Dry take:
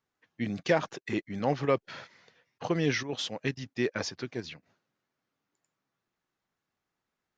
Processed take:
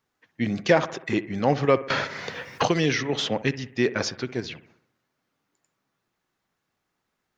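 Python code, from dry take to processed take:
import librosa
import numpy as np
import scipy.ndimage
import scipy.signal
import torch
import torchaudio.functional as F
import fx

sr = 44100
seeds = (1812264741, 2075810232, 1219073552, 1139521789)

y = fx.echo_bbd(x, sr, ms=63, stages=1024, feedback_pct=54, wet_db=-15.5)
y = fx.band_squash(y, sr, depth_pct=100, at=(1.9, 3.42))
y = y * 10.0 ** (6.5 / 20.0)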